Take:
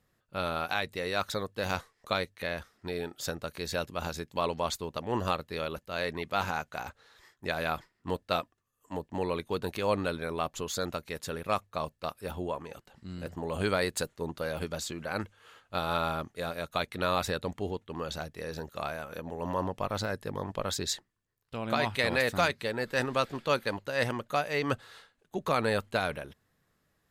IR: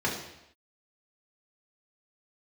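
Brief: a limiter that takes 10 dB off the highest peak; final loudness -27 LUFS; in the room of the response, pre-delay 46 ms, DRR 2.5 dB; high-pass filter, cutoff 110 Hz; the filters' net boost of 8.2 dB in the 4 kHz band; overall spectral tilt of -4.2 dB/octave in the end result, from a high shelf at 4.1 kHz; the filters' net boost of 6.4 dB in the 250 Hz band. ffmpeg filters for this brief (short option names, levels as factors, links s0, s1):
-filter_complex "[0:a]highpass=110,equalizer=f=250:t=o:g=8.5,equalizer=f=4000:t=o:g=6,highshelf=f=4100:g=6,alimiter=limit=0.141:level=0:latency=1,asplit=2[s0][s1];[1:a]atrim=start_sample=2205,adelay=46[s2];[s1][s2]afir=irnorm=-1:irlink=0,volume=0.224[s3];[s0][s3]amix=inputs=2:normalize=0,volume=1.41"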